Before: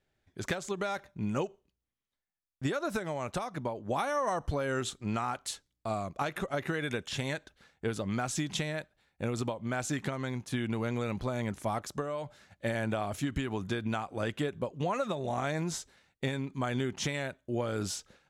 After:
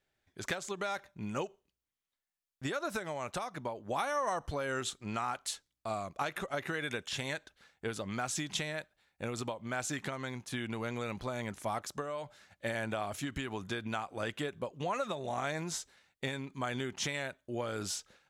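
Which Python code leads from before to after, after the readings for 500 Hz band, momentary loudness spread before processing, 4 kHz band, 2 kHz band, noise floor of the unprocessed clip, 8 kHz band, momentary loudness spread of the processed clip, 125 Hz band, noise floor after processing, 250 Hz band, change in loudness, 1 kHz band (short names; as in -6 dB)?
-3.5 dB, 5 LU, 0.0 dB, -0.5 dB, under -85 dBFS, 0.0 dB, 6 LU, -7.0 dB, under -85 dBFS, -6.0 dB, -3.0 dB, -1.5 dB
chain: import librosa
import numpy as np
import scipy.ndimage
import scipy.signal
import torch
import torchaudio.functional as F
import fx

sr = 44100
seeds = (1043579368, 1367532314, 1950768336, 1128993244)

y = fx.low_shelf(x, sr, hz=500.0, db=-7.5)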